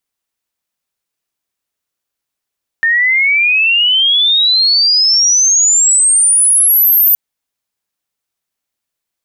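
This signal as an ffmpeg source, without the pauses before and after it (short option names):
-f lavfi -i "aevalsrc='pow(10,(-8.5+2.5*t/4.32)/20)*sin(2*PI*1800*4.32/log(14000/1800)*(exp(log(14000/1800)*t/4.32)-1))':d=4.32:s=44100"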